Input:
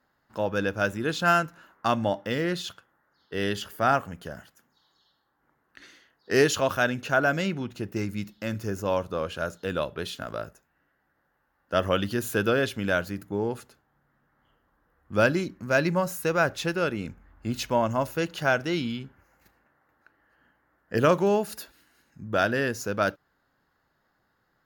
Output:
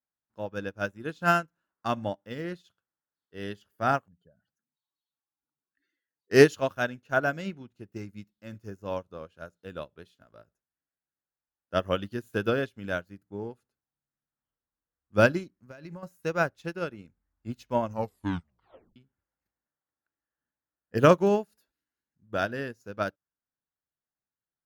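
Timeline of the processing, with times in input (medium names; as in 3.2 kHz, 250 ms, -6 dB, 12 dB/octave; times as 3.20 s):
4.08–6.31 s: spectral contrast enhancement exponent 2.1
15.56–16.03 s: compression 10:1, threshold -26 dBFS
17.84 s: tape stop 1.12 s
whole clip: bass shelf 410 Hz +4 dB; upward expansion 2.5:1, over -37 dBFS; trim +4 dB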